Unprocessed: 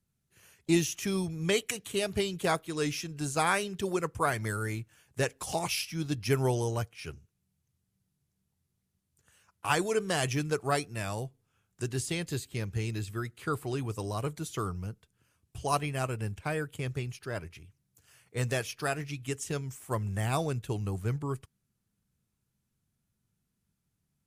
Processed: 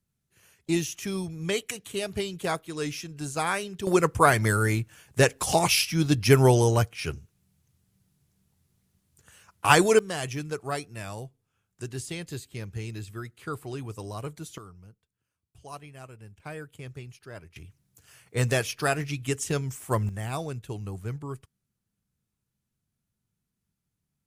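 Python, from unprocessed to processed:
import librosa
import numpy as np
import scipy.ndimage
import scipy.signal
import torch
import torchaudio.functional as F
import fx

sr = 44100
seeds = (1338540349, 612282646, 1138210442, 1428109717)

y = fx.gain(x, sr, db=fx.steps((0.0, -0.5), (3.87, 9.5), (9.99, -2.5), (14.58, -13.0), (16.4, -6.5), (17.56, 6.0), (20.09, -2.5)))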